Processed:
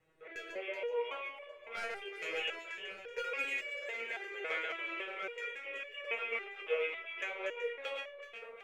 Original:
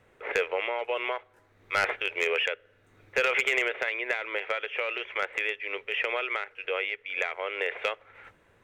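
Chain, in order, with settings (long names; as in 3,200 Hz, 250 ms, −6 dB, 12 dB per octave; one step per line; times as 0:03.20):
delay that plays each chunk backwards 144 ms, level −4 dB
rotating-speaker cabinet horn 0.6 Hz, later 8 Hz, at 0:05.04
on a send: echo with a time of its own for lows and highs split 1,300 Hz, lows 574 ms, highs 378 ms, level −8 dB
on the sum: step-sequenced resonator 3.6 Hz 160–570 Hz
level +5 dB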